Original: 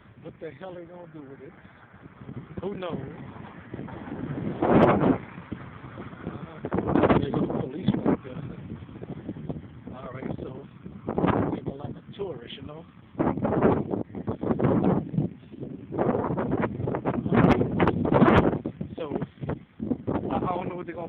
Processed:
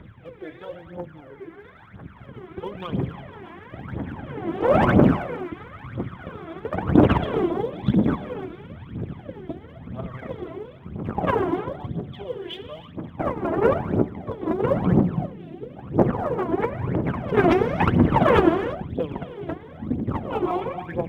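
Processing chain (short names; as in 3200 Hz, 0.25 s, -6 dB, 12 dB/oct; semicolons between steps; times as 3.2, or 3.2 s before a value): pre-echo 0.224 s -19 dB; non-linear reverb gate 0.37 s flat, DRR 7 dB; phaser 1 Hz, delay 3.1 ms, feedback 77%; gain -1 dB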